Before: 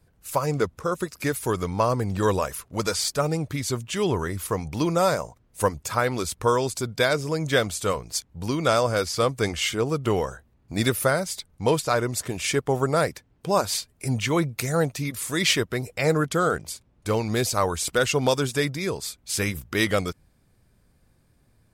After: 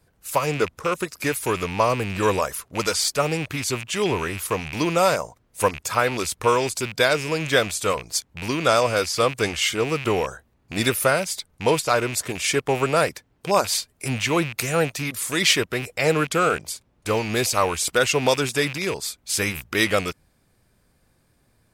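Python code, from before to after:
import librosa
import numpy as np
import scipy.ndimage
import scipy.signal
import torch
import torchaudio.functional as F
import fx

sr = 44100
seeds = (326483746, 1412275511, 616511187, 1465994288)

y = fx.rattle_buzz(x, sr, strikes_db=-34.0, level_db=-24.0)
y = fx.low_shelf(y, sr, hz=260.0, db=-7.0)
y = y * librosa.db_to_amplitude(3.5)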